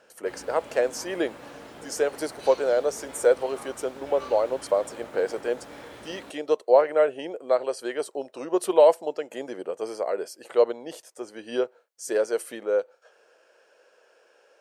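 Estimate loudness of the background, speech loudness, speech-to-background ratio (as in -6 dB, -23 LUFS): -43.5 LUFS, -26.0 LUFS, 17.5 dB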